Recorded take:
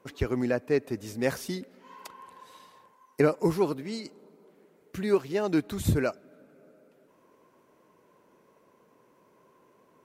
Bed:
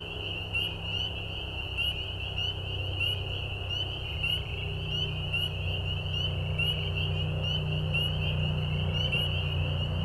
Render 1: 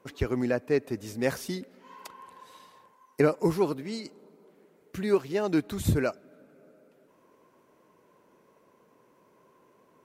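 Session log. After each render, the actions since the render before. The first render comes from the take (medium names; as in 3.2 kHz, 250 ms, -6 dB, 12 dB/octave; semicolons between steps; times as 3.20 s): no audible change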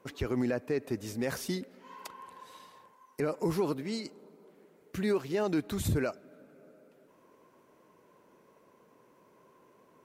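peak limiter -21 dBFS, peak gain reduction 11.5 dB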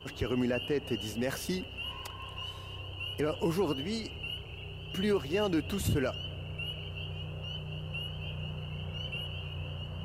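add bed -9.5 dB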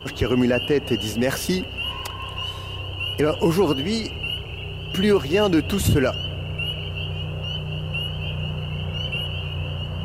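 trim +11 dB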